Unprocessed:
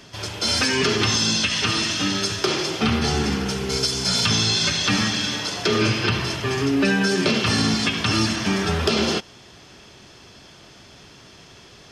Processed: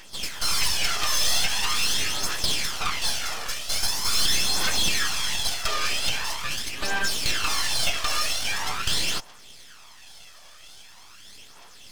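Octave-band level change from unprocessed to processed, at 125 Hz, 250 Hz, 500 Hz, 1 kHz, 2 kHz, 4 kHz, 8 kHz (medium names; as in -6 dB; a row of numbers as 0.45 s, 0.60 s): -15.0 dB, -20.0 dB, -14.5 dB, -3.5 dB, -4.0 dB, -2.5 dB, +0.5 dB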